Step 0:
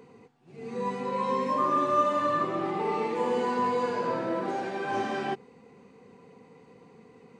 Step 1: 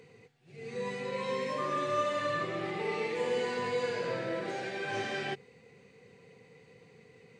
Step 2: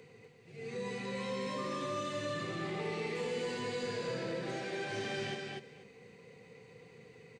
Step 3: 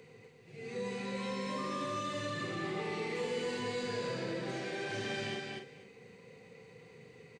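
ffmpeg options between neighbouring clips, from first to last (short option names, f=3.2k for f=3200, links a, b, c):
-af "equalizer=f=125:t=o:w=1:g=7,equalizer=f=250:t=o:w=1:g=-9,equalizer=f=500:t=o:w=1:g=4,equalizer=f=1k:t=o:w=1:g=-10,equalizer=f=2k:t=o:w=1:g=8,equalizer=f=4k:t=o:w=1:g=5,equalizer=f=8k:t=o:w=1:g=4,volume=-3.5dB"
-filter_complex "[0:a]acrossover=split=350|3000[a][b][c];[b]acompressor=threshold=-41dB:ratio=4[d];[a][d][c]amix=inputs=3:normalize=0,aecho=1:1:244|488|732:0.631|0.0946|0.0142,asoftclip=type=tanh:threshold=-27dB"
-filter_complex "[0:a]asplit=2[a][b];[b]adelay=45,volume=-7.5dB[c];[a][c]amix=inputs=2:normalize=0"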